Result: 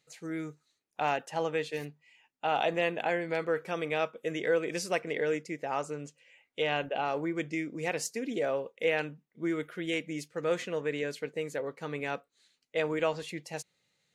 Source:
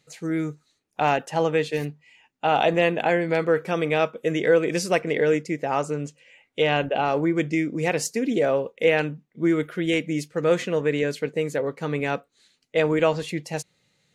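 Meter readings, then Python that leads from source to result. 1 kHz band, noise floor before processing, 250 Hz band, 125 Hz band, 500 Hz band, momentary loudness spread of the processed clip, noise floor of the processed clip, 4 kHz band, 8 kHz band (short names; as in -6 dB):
-8.0 dB, -71 dBFS, -11.0 dB, -12.5 dB, -9.0 dB, 10 LU, -79 dBFS, -7.0 dB, -7.0 dB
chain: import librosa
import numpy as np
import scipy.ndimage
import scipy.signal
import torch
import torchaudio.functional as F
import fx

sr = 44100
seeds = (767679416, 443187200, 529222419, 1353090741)

y = fx.low_shelf(x, sr, hz=330.0, db=-7.0)
y = F.gain(torch.from_numpy(y), -7.0).numpy()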